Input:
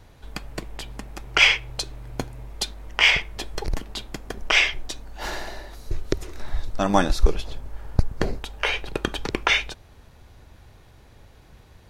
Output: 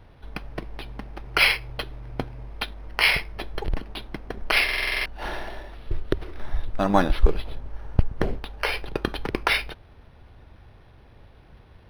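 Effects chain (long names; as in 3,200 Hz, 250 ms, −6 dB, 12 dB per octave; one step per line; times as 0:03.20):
buffer that repeats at 0:04.64, samples 2,048, times 8
linearly interpolated sample-rate reduction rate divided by 6×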